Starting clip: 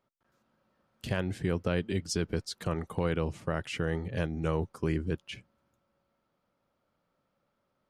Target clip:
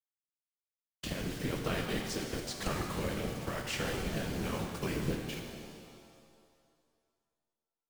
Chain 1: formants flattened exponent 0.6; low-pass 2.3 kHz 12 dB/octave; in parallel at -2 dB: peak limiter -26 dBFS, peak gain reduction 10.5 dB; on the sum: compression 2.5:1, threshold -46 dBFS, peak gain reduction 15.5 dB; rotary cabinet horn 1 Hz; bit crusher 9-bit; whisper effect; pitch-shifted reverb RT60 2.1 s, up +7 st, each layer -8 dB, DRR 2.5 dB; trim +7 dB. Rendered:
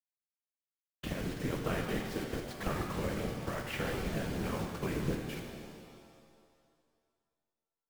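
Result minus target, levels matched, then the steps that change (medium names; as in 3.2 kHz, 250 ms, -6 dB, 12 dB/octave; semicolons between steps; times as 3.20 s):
8 kHz band -5.0 dB
change: low-pass 8 kHz 12 dB/octave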